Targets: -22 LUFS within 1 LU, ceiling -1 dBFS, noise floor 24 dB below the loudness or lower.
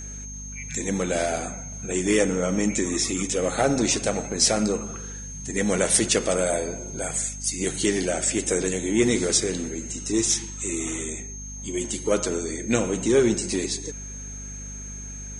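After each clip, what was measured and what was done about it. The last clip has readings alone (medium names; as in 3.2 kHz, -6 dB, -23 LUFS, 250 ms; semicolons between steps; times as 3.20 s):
hum 50 Hz; highest harmonic 250 Hz; hum level -36 dBFS; steady tone 6.4 kHz; tone level -37 dBFS; loudness -24.0 LUFS; peak level -6.0 dBFS; loudness target -22.0 LUFS
-> de-hum 50 Hz, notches 5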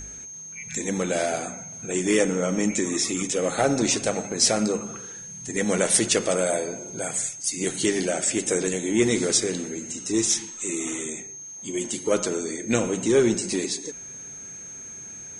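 hum not found; steady tone 6.4 kHz; tone level -37 dBFS
-> band-stop 6.4 kHz, Q 30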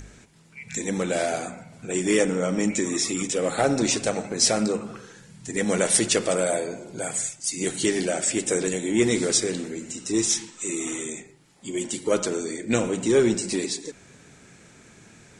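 steady tone not found; loudness -24.5 LUFS; peak level -6.5 dBFS; loudness target -22.0 LUFS
-> trim +2.5 dB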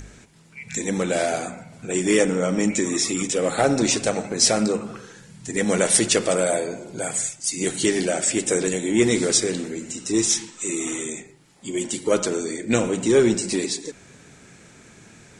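loudness -22.0 LUFS; peak level -4.0 dBFS; noise floor -49 dBFS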